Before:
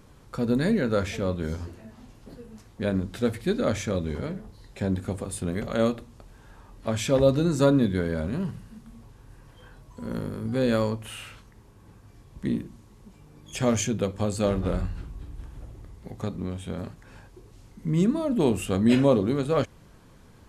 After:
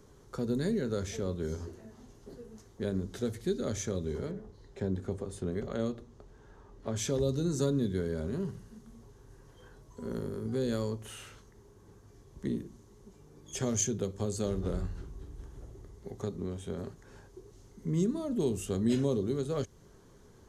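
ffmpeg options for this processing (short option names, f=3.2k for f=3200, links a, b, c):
-filter_complex "[0:a]asettb=1/sr,asplit=3[a][b][c];[a]atrim=end=4.314[d];[b]atrim=start=4.31:end=6.96,asetpts=PTS-STARTPTS,afade=t=in:d=0.004:c=qsin,afade=t=out:st=2.646:d=0.004:c=qsin,aemphasis=mode=reproduction:type=50kf[e];[c]atrim=start=6.956[f];[d][e]acrossfade=d=0.004:c1=hsin:c2=qsin[g];[g][f]acrossfade=d=0.004:c1=qsin:c2=hsin,equalizer=f=400:t=o:w=0.33:g=11,equalizer=f=2.5k:t=o:w=0.33:g=-7,equalizer=f=6.3k:t=o:w=0.33:g=8,acrossover=split=230|3000[h][i][j];[i]acompressor=threshold=-30dB:ratio=2.5[k];[h][k][j]amix=inputs=3:normalize=0,volume=-6dB"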